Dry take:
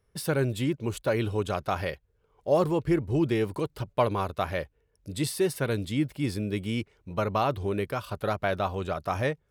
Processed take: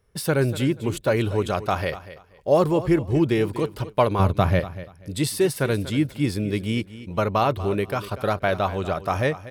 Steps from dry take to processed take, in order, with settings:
0:04.19–0:04.60: parametric band 130 Hz +14 dB 2.1 octaves
repeating echo 240 ms, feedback 22%, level −15 dB
level +5 dB

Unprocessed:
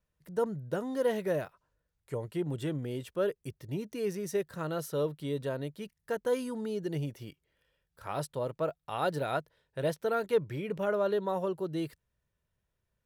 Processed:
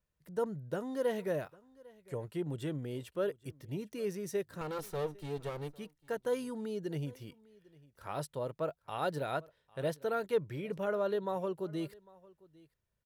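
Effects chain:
0:04.61–0:05.78: lower of the sound and its delayed copy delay 2.2 ms
single-tap delay 801 ms −23.5 dB
level −3.5 dB

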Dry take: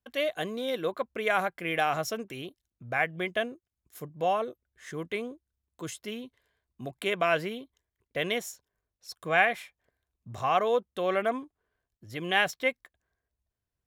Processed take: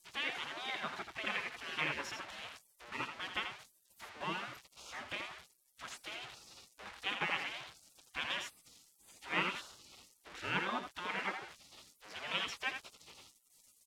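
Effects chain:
spike at every zero crossing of −26 dBFS
low-pass filter 2,000 Hz 12 dB per octave
single-tap delay 83 ms −7.5 dB
gate on every frequency bin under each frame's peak −20 dB weak
level +5 dB

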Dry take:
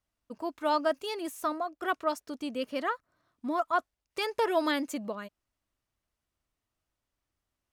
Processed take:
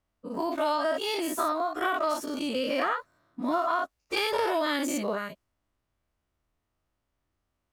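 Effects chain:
every bin's largest magnitude spread in time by 120 ms
downward compressor 5 to 1, threshold −26 dBFS, peak gain reduction 8 dB
one half of a high-frequency compander decoder only
level +2 dB

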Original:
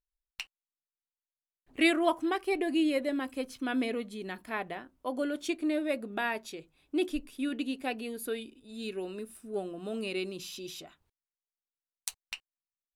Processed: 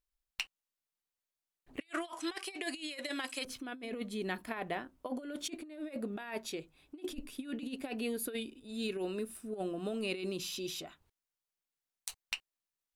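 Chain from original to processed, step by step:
0:01.80–0:03.45: meter weighting curve ITU-R 468
compressor whose output falls as the input rises −36 dBFS, ratio −0.5
level −2 dB

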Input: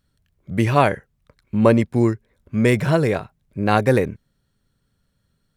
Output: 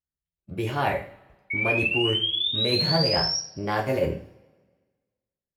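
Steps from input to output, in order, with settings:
downward expander −45 dBFS
reversed playback
downward compressor, threshold −25 dBFS, peak gain reduction 15.5 dB
reversed playback
formants moved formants +3 semitones
sound drawn into the spectrogram rise, 0:01.50–0:03.39, 2,200–5,700 Hz −29 dBFS
coupled-rooms reverb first 0.4 s, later 1.5 s, from −22 dB, DRR −0.5 dB

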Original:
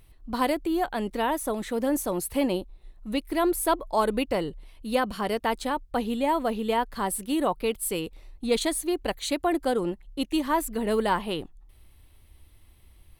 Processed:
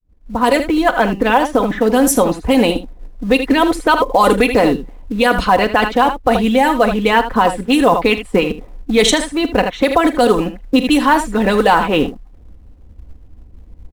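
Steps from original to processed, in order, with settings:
fade in at the beginning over 0.57 s
high-shelf EQ 6,900 Hz −6 dB
comb filter 3.8 ms, depth 63%
low-pass that shuts in the quiet parts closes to 430 Hz, open at −18.5 dBFS
harmonic and percussive parts rebalanced harmonic −11 dB
in parallel at −7 dB: floating-point word with a short mantissa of 2 bits
on the sum: change of speed 0.948×
ambience of single reflections 41 ms −17 dB, 78 ms −12.5 dB
boost into a limiter +18 dB
level −1 dB

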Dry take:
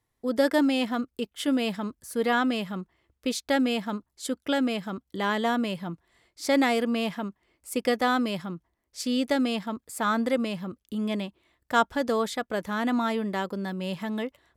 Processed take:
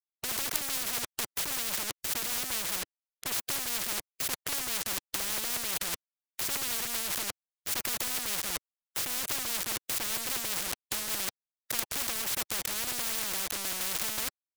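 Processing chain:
wavefolder on the positive side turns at −24.5 dBFS
log-companded quantiser 2 bits
rotating-speaker cabinet horn 5 Hz, later 1.2 Hz, at 0:11.59
every bin compressed towards the loudest bin 10 to 1
level +2 dB

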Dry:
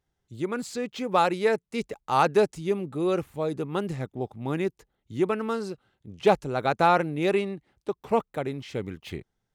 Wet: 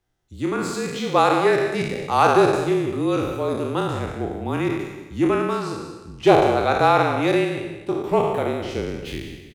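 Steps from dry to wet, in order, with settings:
peak hold with a decay on every bin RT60 1.15 s
single-tap delay 186 ms −12 dB
frequency shifter −33 Hz
level +2.5 dB

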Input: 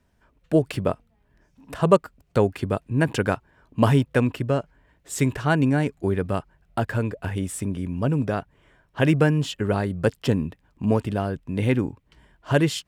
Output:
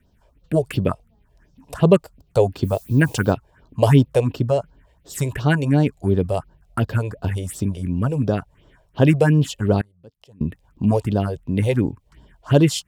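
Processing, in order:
0:02.63–0:03.31: background noise blue −52 dBFS
0:09.81–0:10.41: gate with flip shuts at −27 dBFS, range −30 dB
all-pass phaser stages 4, 2.8 Hz, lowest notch 220–2,200 Hz
level +5.5 dB

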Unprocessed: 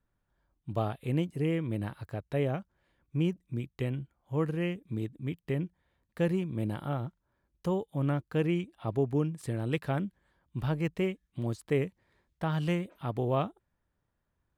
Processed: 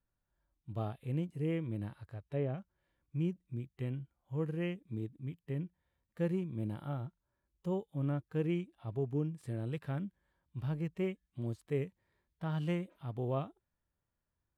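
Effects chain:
harmonic and percussive parts rebalanced percussive −10 dB
0:01.87–0:02.58: treble cut that deepens with the level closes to 2,500 Hz, closed at −25 dBFS
level −4.5 dB

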